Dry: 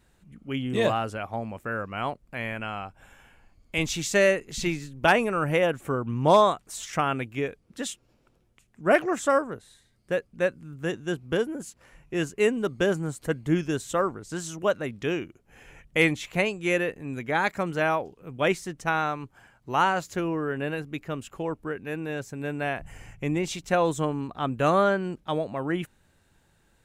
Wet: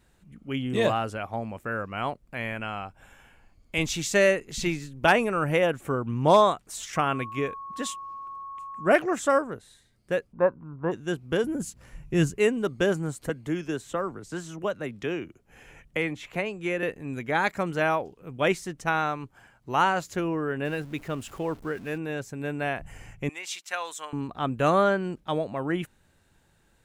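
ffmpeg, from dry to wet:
-filter_complex "[0:a]asettb=1/sr,asplit=3[a][b][c];[a]atrim=end=6.964[d];[b]atrim=start=6.96:end=8.93,asetpts=PTS-STARTPTS,afade=t=in:d=0.004:c=qsin,afade=t=out:st=1.966:d=0.004:c=qsin,aeval=exprs='val(0)+0.0158*sin(2*PI*1100*n/s)':c=same[e];[c]atrim=start=8.926[f];[d][e]acrossfade=d=0.004:c1=hsin:c2=qsin[g];[g][f]acrossfade=d=0.004:c1=qsin:c2=hsin,asplit=3[h][i][j];[h]afade=t=out:st=10.32:d=0.02[k];[i]lowpass=f=1k:t=q:w=6.2,afade=t=in:st=10.32:d=0.02,afade=t=out:st=10.91:d=0.02[l];[j]afade=t=in:st=10.91:d=0.02[m];[k][l][m]amix=inputs=3:normalize=0,asettb=1/sr,asplit=3[n][o][p];[n]atrim=end=11.444[q];[o]atrim=start=11.44:end=12.38,asetpts=PTS-STARTPTS,afade=t=in:d=0.004:c=qsin,afade=t=out:st=0.936:d=0.004:c=qsin,bass=f=250:g=12,treble=f=4k:g=4[r];[p]atrim=start=12.376[s];[q][r]acrossfade=d=0.004:c1=hsin:c2=qsin[t];[t][s]acrossfade=d=0.004:c1=qsin:c2=hsin,asettb=1/sr,asplit=3[u][v][w];[u]atrim=end=13.294[x];[v]atrim=start=13.29:end=16.83,asetpts=PTS-STARTPTS,afade=t=in:d=0.004:c=qsin,afade=t=out:st=3.536:d=0.004:c=qsin,acrossover=split=110|230|2800[y][z][aa][ab];[y]acompressor=threshold=-53dB:ratio=3[ac];[z]acompressor=threshold=-41dB:ratio=3[ad];[aa]acompressor=threshold=-27dB:ratio=3[ae];[ab]acompressor=threshold=-49dB:ratio=3[af];[ac][ad][ae][af]amix=inputs=4:normalize=0[ag];[w]atrim=start=16.826[ah];[x][ag]acrossfade=d=0.004:c1=hsin:c2=qsin[ai];[ai][ah]acrossfade=d=0.004:c1=qsin:c2=hsin,asettb=1/sr,asplit=3[aj][ak][al];[aj]atrim=end=20.654[am];[ak]atrim=start=20.65:end=21.98,asetpts=PTS-STARTPTS,afade=t=in:d=0.004:c=qsin,afade=t=out:st=1.326:d=0.004:c=qsin,aeval=exprs='val(0)+0.5*0.00562*sgn(val(0))':c=same[an];[al]atrim=start=21.976[ao];[am][an]acrossfade=d=0.004:c1=hsin:c2=qsin[ap];[ap][ao]acrossfade=d=0.004:c1=qsin:c2=hsin,asettb=1/sr,asplit=3[aq][ar][as];[aq]atrim=end=23.294[at];[ar]atrim=start=23.29:end=24.13,asetpts=PTS-STARTPTS,afade=t=in:d=0.004:c=qsin,afade=t=out:st=0.836:d=0.004:c=qsin,highpass=1.3k[au];[as]atrim=start=24.126[av];[at][au]acrossfade=d=0.004:c1=hsin:c2=qsin[aw];[aw][av]acrossfade=d=0.004:c1=qsin:c2=hsin"

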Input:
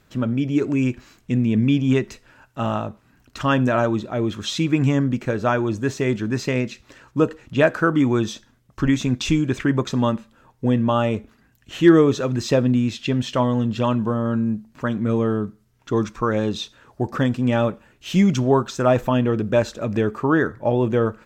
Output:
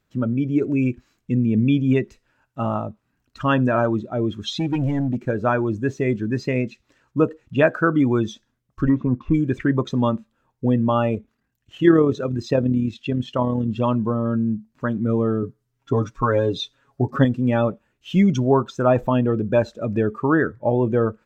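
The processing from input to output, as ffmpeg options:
-filter_complex "[0:a]asettb=1/sr,asplit=3[a][b][c];[a]atrim=end=4.514[d];[b]atrim=start=4.51:end=5.2,asetpts=PTS-STARTPTS,afade=t=in:d=0.004:c=qsin,afade=t=out:st=0.686:d=0.004:c=qsin,asoftclip=type=hard:threshold=-18dB[e];[c]atrim=start=5.196[f];[d][e]acrossfade=d=0.004:c1=hsin:c2=qsin[g];[g][f]acrossfade=d=0.004:c1=qsin:c2=hsin,asplit=3[h][i][j];[h]afade=t=out:st=8.88:d=0.02[k];[i]lowpass=f=1.1k:t=q:w=3.9,afade=t=in:st=8.88:d=0.02,afade=t=out:st=9.33:d=0.02[l];[j]afade=t=in:st=9.33:d=0.02[m];[k][l][m]amix=inputs=3:normalize=0,asettb=1/sr,asplit=3[n][o][p];[n]atrim=end=11.154[q];[o]atrim=start=11.15:end=13.68,asetpts=PTS-STARTPTS,afade=t=in:d=0.004:c=qsin,afade=t=out:st=2.526:d=0.004:c=qsin,tremolo=f=37:d=0.4[r];[p]atrim=start=13.676[s];[q][r]acrossfade=d=0.004:c1=hsin:c2=qsin[t];[t][s]acrossfade=d=0.004:c1=qsin:c2=hsin,asettb=1/sr,asplit=3[u][v][w];[u]atrim=end=15.424[x];[v]atrim=start=15.42:end=17.25,asetpts=PTS-STARTPTS,afade=t=in:d=0.004:c=qsin,afade=t=out:st=1.826:d=0.004:c=qsin,aecho=1:1:7.3:0.84,atrim=end_sample=80703[y];[w]atrim=start=17.246[z];[x][y]acrossfade=d=0.004:c1=hsin:c2=qsin[aa];[aa][z]acrossfade=d=0.004:c1=qsin:c2=hsin,afftdn=nr=14:nf=-28"

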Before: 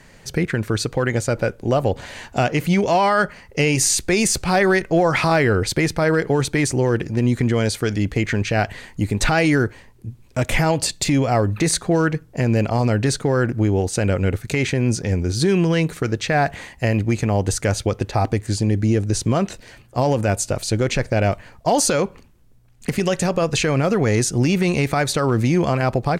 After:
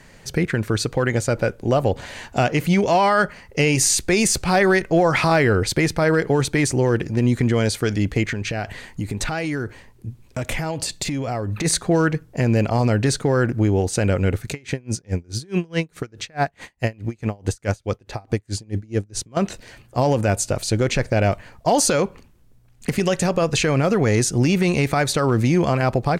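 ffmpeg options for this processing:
-filter_complex "[0:a]asplit=3[a][b][c];[a]afade=t=out:st=8.23:d=0.02[d];[b]acompressor=threshold=-21dB:ratio=6:attack=3.2:release=140:knee=1:detection=peak,afade=t=in:st=8.23:d=0.02,afade=t=out:st=11.64:d=0.02[e];[c]afade=t=in:st=11.64:d=0.02[f];[d][e][f]amix=inputs=3:normalize=0,asettb=1/sr,asplit=3[g][h][i];[g]atrim=end=14.514[j];[h]atrim=start=14.51:end=19.37,asetpts=PTS-STARTPTS,afade=t=in:d=0.004:c=qsin,afade=t=out:st=4.856:d=0.004:c=qsin,aeval=exprs='val(0)*pow(10,-32*(0.5-0.5*cos(2*PI*4.7*n/s))/20)':c=same[k];[i]atrim=start=19.366[l];[j][k]acrossfade=d=0.004:c1=hsin:c2=qsin[m];[m][l]acrossfade=d=0.004:c1=qsin:c2=hsin"

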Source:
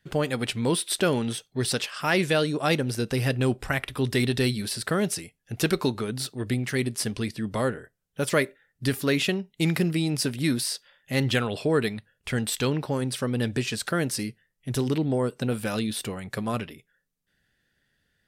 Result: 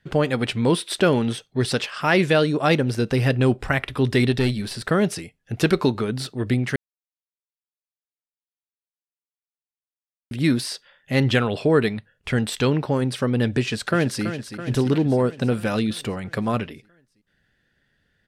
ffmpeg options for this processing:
-filter_complex "[0:a]asettb=1/sr,asplit=3[a][b][c];[a]atrim=end=4.324[d];[b]atrim=start=4.32:end=4.91,asetpts=PTS-STARTPTS,afade=t=in:d=0.004:c=qsin,afade=t=out:st=0.586:d=0.004:c=qsin,aeval=exprs='(tanh(7.08*val(0)+0.45)-tanh(0.45))/7.08':c=same[e];[c]atrim=start=4.906[f];[d][e]acrossfade=d=0.004:c1=hsin:c2=qsin[g];[g][f]acrossfade=d=0.004:c1=qsin:c2=hsin,asplit=2[h][i];[i]afade=t=in:st=13.59:d=0.01,afade=t=out:st=14.24:d=0.01,aecho=0:1:330|660|990|1320|1650|1980|2310|2640|2970:0.316228|0.205548|0.133606|0.0868441|0.0564486|0.0366916|0.0238495|0.0155022|0.0100764[j];[h][j]amix=inputs=2:normalize=0,asplit=3[k][l][m];[k]atrim=end=6.76,asetpts=PTS-STARTPTS,afade=t=out:st=6.756:d=0.004:c=hsin[n];[l]atrim=start=6.76:end=10.31,asetpts=PTS-STARTPTS,volume=0[o];[m]atrim=start=10.31,asetpts=PTS-STARTPTS,afade=t=in:d=0.004:c=hsin[p];[n][o][p]concat=n=3:v=0:a=1,aemphasis=mode=reproduction:type=50kf,volume=5.5dB"

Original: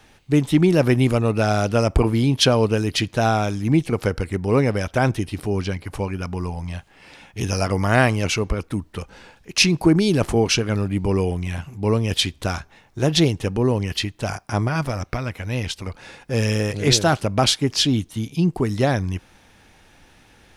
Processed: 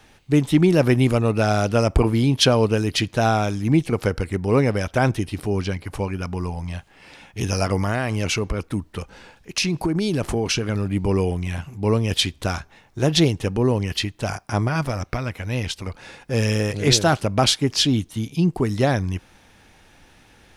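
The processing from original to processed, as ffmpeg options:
-filter_complex "[0:a]asettb=1/sr,asplit=3[a][b][c];[a]atrim=end=7.764[d];[b]atrim=start=7.76:end=10.91,asetpts=PTS-STARTPTS,afade=t=in:d=0.004:c=qsin,afade=t=out:st=3.146:d=0.004:c=qsin,acompressor=threshold=-17dB:ratio=12:attack=3.2:release=140:knee=1:detection=peak[e];[c]atrim=start=10.906[f];[d][e]acrossfade=d=0.004:c1=hsin:c2=qsin[g];[g][f]acrossfade=d=0.004:c1=qsin:c2=hsin"

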